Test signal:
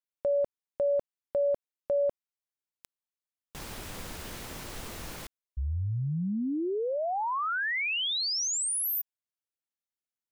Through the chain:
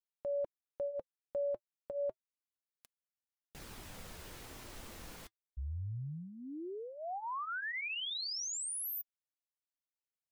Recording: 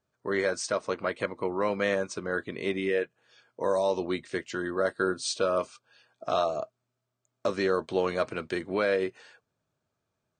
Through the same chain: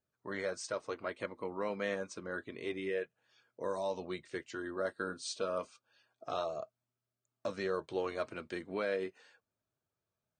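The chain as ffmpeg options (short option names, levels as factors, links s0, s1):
-af "flanger=delay=0.4:depth=4.3:regen=-60:speed=0.28:shape=triangular,volume=0.562"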